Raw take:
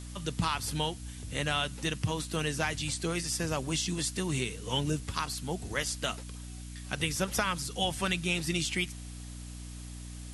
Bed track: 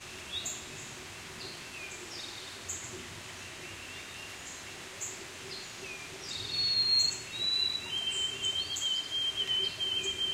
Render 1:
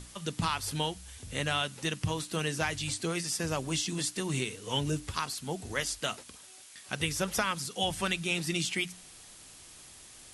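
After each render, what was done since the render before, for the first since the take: notches 60/120/180/240/300 Hz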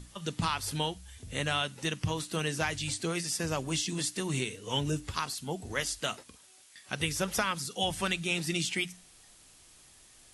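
noise print and reduce 6 dB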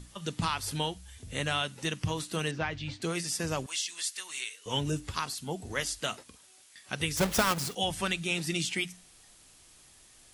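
2.51–3.02 air absorption 240 m; 3.66–4.66 HPF 1400 Hz; 7.17–7.75 half-waves squared off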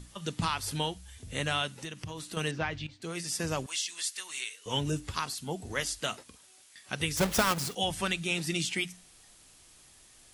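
1.74–2.37 compressor 3:1, threshold -38 dBFS; 2.87–3.38 fade in, from -16 dB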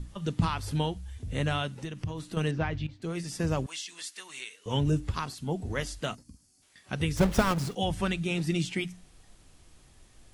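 6.15–6.62 spectral gain 320–4200 Hz -16 dB; tilt -2.5 dB/oct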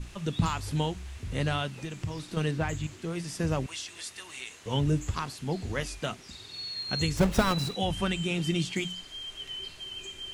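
add bed track -8 dB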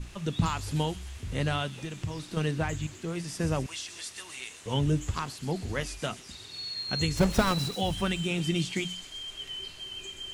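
thin delay 0.129 s, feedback 69%, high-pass 5200 Hz, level -7 dB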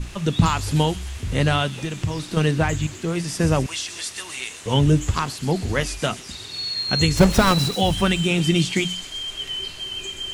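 gain +9.5 dB; limiter -3 dBFS, peak gain reduction 3 dB

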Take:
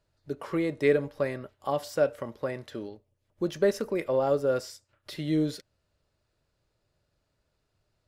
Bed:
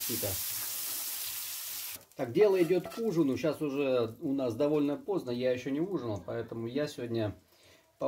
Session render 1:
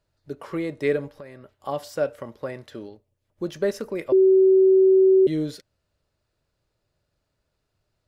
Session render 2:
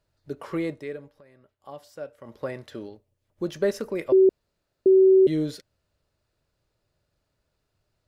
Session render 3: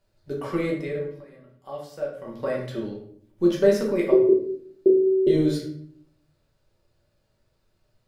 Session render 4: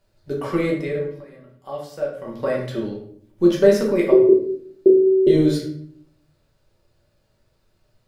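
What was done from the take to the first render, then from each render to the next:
1.1–1.55 compressor 3:1, threshold -41 dBFS; 4.12–5.27 bleep 380 Hz -12 dBFS
0.7–2.36 dip -12.5 dB, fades 0.15 s; 4.29–4.86 room tone
shoebox room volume 98 m³, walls mixed, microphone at 1.1 m
gain +4.5 dB; limiter -3 dBFS, peak gain reduction 1 dB

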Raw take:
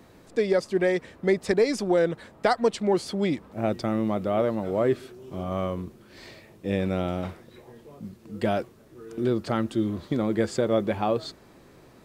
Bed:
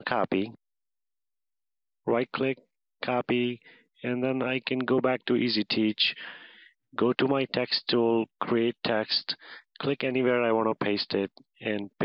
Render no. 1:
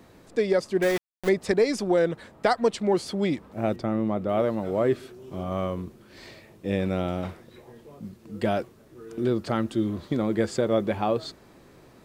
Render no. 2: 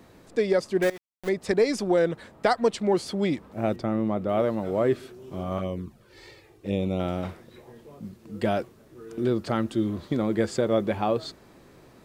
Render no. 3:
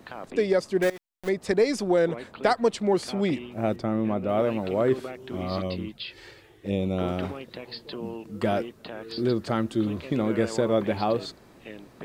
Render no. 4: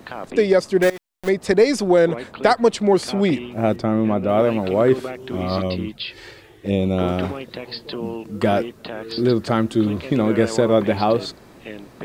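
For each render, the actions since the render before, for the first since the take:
0.82–1.29 sample gate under -27 dBFS; 3.76–4.29 high shelf 2700 Hz -10 dB
0.9–1.6 fade in, from -19.5 dB; 5.58–7 envelope flanger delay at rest 3 ms, full sweep at -24 dBFS
add bed -12.5 dB
gain +7 dB; limiter -3 dBFS, peak gain reduction 1 dB

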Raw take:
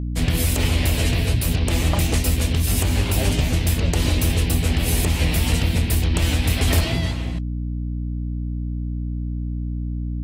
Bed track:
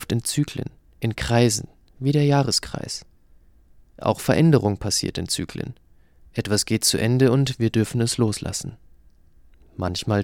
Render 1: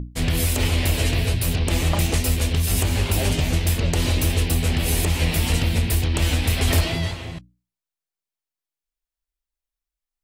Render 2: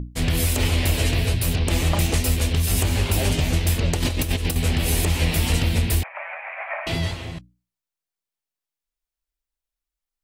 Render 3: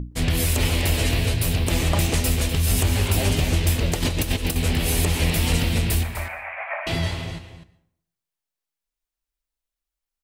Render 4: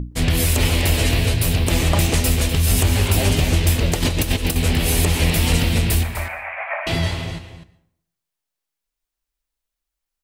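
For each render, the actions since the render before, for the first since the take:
notches 60/120/180/240/300 Hz
3.95–4.56 negative-ratio compressor -22 dBFS, ratio -0.5; 6.03–6.87 Chebyshev band-pass 580–2400 Hz, order 5
echo 0.25 s -11.5 dB; plate-style reverb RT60 0.68 s, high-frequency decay 0.65×, pre-delay 0.105 s, DRR 16.5 dB
gain +3.5 dB

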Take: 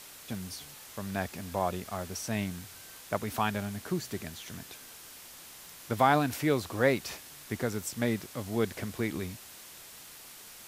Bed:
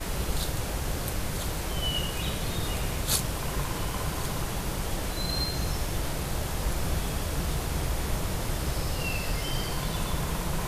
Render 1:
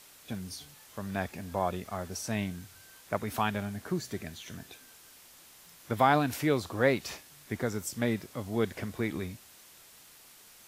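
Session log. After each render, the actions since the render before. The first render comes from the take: noise print and reduce 6 dB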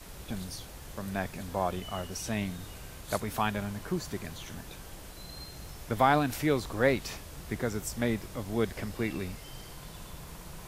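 add bed -15.5 dB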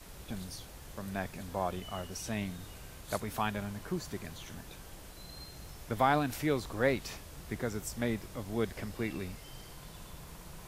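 gain -3.5 dB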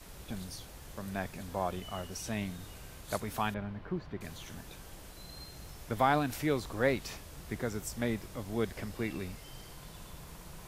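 3.54–4.21 air absorption 360 m

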